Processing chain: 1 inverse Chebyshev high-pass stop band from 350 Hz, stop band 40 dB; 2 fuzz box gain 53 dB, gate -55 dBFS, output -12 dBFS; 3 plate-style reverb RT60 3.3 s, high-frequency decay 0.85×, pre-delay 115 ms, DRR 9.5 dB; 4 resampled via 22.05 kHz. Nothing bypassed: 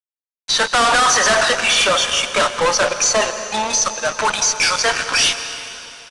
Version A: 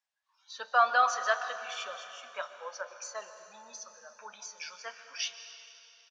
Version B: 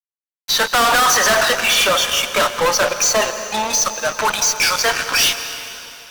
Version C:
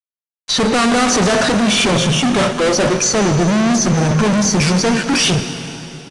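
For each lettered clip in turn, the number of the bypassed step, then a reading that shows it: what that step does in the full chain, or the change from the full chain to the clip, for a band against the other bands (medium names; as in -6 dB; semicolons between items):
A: 2, 250 Hz band -16.5 dB; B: 4, momentary loudness spread change +1 LU; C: 1, 125 Hz band +22.5 dB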